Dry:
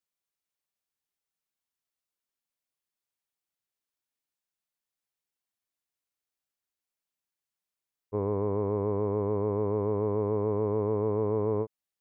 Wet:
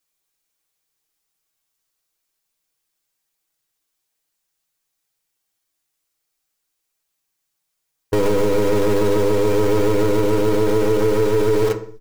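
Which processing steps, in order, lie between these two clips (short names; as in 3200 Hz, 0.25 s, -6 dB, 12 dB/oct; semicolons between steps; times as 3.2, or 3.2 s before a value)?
tone controls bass -2 dB, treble +4 dB; sample leveller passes 2; feedback echo 62 ms, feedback 46%, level -9 dB; in parallel at -4.5 dB: bit-crush 5-bit; on the sum: low shelf 63 Hz +9 dB; notches 50/100/150/200 Hz; comb 6.3 ms, depth 51%; on a send at -8 dB: reverb RT60 0.45 s, pre-delay 3 ms; on the sum: maximiser +21.5 dB; gain -8.5 dB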